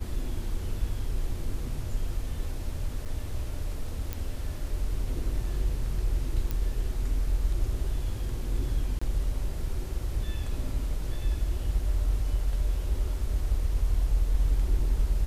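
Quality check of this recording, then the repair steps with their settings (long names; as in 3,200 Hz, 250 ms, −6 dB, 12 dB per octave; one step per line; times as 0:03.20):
0:03.05–0:03.06: drop-out 6.8 ms
0:04.13: click
0:06.51: click
0:08.99–0:09.02: drop-out 25 ms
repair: click removal
repair the gap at 0:03.05, 6.8 ms
repair the gap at 0:08.99, 25 ms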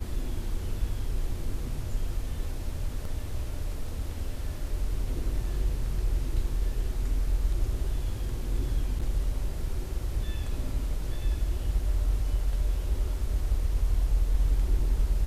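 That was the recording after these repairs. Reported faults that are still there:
none of them is left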